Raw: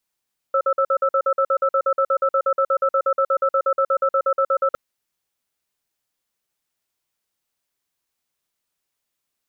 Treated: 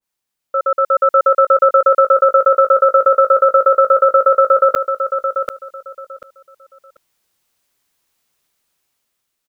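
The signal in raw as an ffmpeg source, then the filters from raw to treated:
-f lavfi -i "aevalsrc='0.126*(sin(2*PI*543*t)+sin(2*PI*1320*t))*clip(min(mod(t,0.12),0.07-mod(t,0.12))/0.005,0,1)':duration=4.21:sample_rate=44100"
-filter_complex "[0:a]dynaudnorm=framelen=400:gausssize=5:maxgain=10.5dB,asplit=2[link_01][link_02];[link_02]aecho=0:1:739|1478|2217:0.398|0.0876|0.0193[link_03];[link_01][link_03]amix=inputs=2:normalize=0,adynamicequalizer=threshold=0.0447:dfrequency=1600:dqfactor=0.7:tfrequency=1600:tqfactor=0.7:attack=5:release=100:ratio=0.375:range=3:mode=boostabove:tftype=highshelf"

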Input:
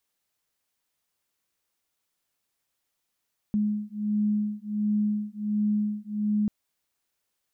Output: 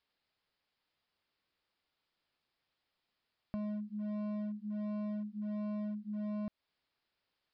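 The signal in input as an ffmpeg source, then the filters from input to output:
-f lavfi -i "aevalsrc='0.0447*(sin(2*PI*209*t)+sin(2*PI*210.4*t))':duration=2.94:sample_rate=44100"
-af "aresample=11025,volume=29.5dB,asoftclip=hard,volume=-29.5dB,aresample=44100,acompressor=threshold=-40dB:ratio=3"

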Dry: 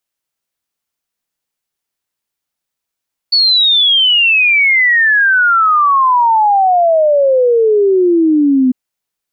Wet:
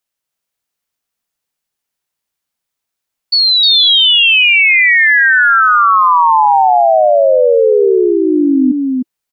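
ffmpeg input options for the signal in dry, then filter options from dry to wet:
-f lavfi -i "aevalsrc='0.447*clip(min(t,5.4-t)/0.01,0,1)*sin(2*PI*4500*5.4/log(250/4500)*(exp(log(250/4500)*t/5.4)-1))':duration=5.4:sample_rate=44100"
-filter_complex "[0:a]equalizer=frequency=330:width_type=o:width=0.22:gain=-4.5,asplit=2[link_01][link_02];[link_02]aecho=0:1:307:0.631[link_03];[link_01][link_03]amix=inputs=2:normalize=0"

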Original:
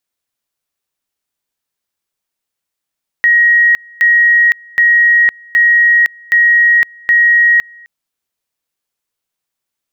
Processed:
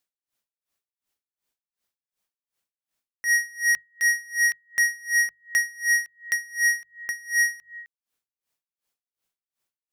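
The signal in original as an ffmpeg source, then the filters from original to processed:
-f lavfi -i "aevalsrc='pow(10,(-5.5-29*gte(mod(t,0.77),0.51))/20)*sin(2*PI*1890*t)':duration=4.62:sample_rate=44100"
-af "bandreject=frequency=50:width_type=h:width=6,bandreject=frequency=100:width_type=h:width=6,bandreject=frequency=150:width_type=h:width=6,asoftclip=type=hard:threshold=-17.5dB,aeval=exprs='val(0)*pow(10,-27*(0.5-0.5*cos(2*PI*2.7*n/s))/20)':channel_layout=same"

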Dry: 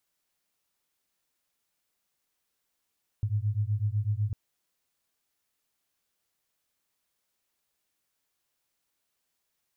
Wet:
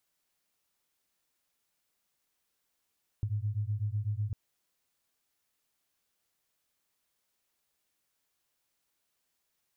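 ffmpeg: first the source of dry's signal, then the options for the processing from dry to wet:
-f lavfi -i "aevalsrc='0.0376*(sin(2*PI*101*t)+sin(2*PI*109*t))':duration=1.1:sample_rate=44100"
-af "acompressor=threshold=-30dB:ratio=6"

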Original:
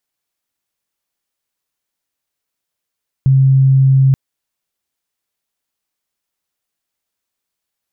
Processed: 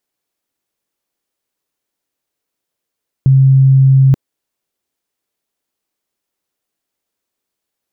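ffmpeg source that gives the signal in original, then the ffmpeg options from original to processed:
-f lavfi -i "aevalsrc='0.473*sin(2*PI*134*t)':duration=0.88:sample_rate=44100"
-af "equalizer=frequency=360:width=0.74:gain=7.5"

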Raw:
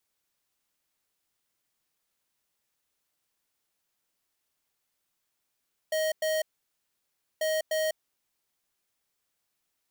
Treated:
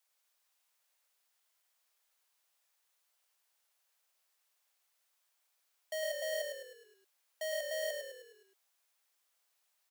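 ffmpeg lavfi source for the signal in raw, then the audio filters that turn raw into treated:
-f lavfi -i "aevalsrc='0.0422*(2*lt(mod(628*t,1),0.5)-1)*clip(min(mod(mod(t,1.49),0.3),0.2-mod(mod(t,1.49),0.3))/0.005,0,1)*lt(mod(t,1.49),0.6)':duration=2.98:sample_rate=44100"
-filter_complex "[0:a]highpass=frequency=550:width=0.5412,highpass=frequency=550:width=1.3066,alimiter=level_in=6dB:limit=-24dB:level=0:latency=1,volume=-6dB,asplit=7[link_01][link_02][link_03][link_04][link_05][link_06][link_07];[link_02]adelay=104,afreqshift=-40,volume=-4.5dB[link_08];[link_03]adelay=208,afreqshift=-80,volume=-10.5dB[link_09];[link_04]adelay=312,afreqshift=-120,volume=-16.5dB[link_10];[link_05]adelay=416,afreqshift=-160,volume=-22.6dB[link_11];[link_06]adelay=520,afreqshift=-200,volume=-28.6dB[link_12];[link_07]adelay=624,afreqshift=-240,volume=-34.6dB[link_13];[link_01][link_08][link_09][link_10][link_11][link_12][link_13]amix=inputs=7:normalize=0"

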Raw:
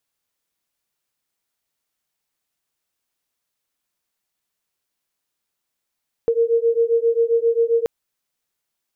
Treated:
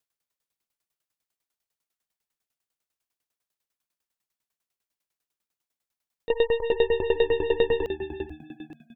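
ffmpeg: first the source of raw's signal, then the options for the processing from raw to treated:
-f lavfi -i "aevalsrc='0.126*(sin(2*PI*459*t)+sin(2*PI*466.5*t))':duration=1.58:sample_rate=44100"
-filter_complex "[0:a]aeval=exprs='0.266*(cos(1*acos(clip(val(0)/0.266,-1,1)))-cos(1*PI/2))+0.0188*(cos(6*acos(clip(val(0)/0.266,-1,1)))-cos(6*PI/2))+0.0531*(cos(8*acos(clip(val(0)/0.266,-1,1)))-cos(8*PI/2))':channel_layout=same,asplit=2[link_01][link_02];[link_02]asplit=4[link_03][link_04][link_05][link_06];[link_03]adelay=435,afreqshift=-77,volume=-9dB[link_07];[link_04]adelay=870,afreqshift=-154,volume=-19.2dB[link_08];[link_05]adelay=1305,afreqshift=-231,volume=-29.3dB[link_09];[link_06]adelay=1740,afreqshift=-308,volume=-39.5dB[link_10];[link_07][link_08][link_09][link_10]amix=inputs=4:normalize=0[link_11];[link_01][link_11]amix=inputs=2:normalize=0,aeval=exprs='val(0)*pow(10,-19*if(lt(mod(10*n/s,1),2*abs(10)/1000),1-mod(10*n/s,1)/(2*abs(10)/1000),(mod(10*n/s,1)-2*abs(10)/1000)/(1-2*abs(10)/1000))/20)':channel_layout=same"

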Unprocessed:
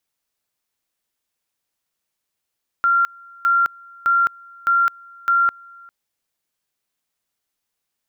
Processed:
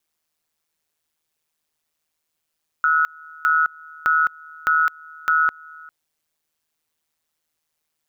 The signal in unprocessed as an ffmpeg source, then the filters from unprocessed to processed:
-f lavfi -i "aevalsrc='pow(10,(-13-27*gte(mod(t,0.61),0.21))/20)*sin(2*PI*1380*t)':duration=3.05:sample_rate=44100"
-filter_complex "[0:a]asplit=2[link_01][link_02];[link_02]acompressor=threshold=-27dB:ratio=6,volume=-2dB[link_03];[link_01][link_03]amix=inputs=2:normalize=0,aeval=exprs='val(0)*sin(2*PI*78*n/s)':channel_layout=same"

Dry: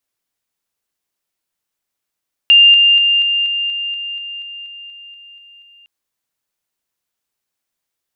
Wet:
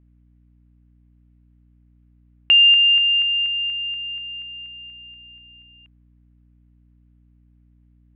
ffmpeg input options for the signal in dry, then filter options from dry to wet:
-f lavfi -i "aevalsrc='pow(10,(-4-3*floor(t/0.24))/20)*sin(2*PI*2800*t)':duration=3.36:sample_rate=44100"
-af "lowpass=frequency=2600:width=0.5412,lowpass=frequency=2600:width=1.3066,aeval=exprs='val(0)+0.002*(sin(2*PI*60*n/s)+sin(2*PI*2*60*n/s)/2+sin(2*PI*3*60*n/s)/3+sin(2*PI*4*60*n/s)/4+sin(2*PI*5*60*n/s)/5)':channel_layout=same"

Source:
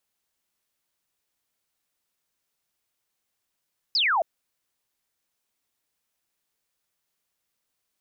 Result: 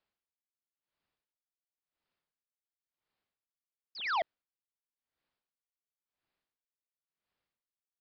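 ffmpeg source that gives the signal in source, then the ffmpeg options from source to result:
-f lavfi -i "aevalsrc='0.106*clip(t/0.002,0,1)*clip((0.27-t)/0.002,0,1)*sin(2*PI*5300*0.27/log(610/5300)*(exp(log(610/5300)*t/0.27)-1))':duration=0.27:sample_rate=44100"
-af "lowpass=frequency=2400:poles=1,aresample=11025,asoftclip=type=hard:threshold=-28dB,aresample=44100,aeval=exprs='val(0)*pow(10,-33*(0.5-0.5*cos(2*PI*0.95*n/s))/20)':channel_layout=same"

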